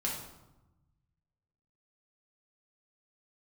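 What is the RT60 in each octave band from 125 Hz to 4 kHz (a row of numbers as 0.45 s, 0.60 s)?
1.9 s, 1.4 s, 1.0 s, 1.0 s, 0.70 s, 0.65 s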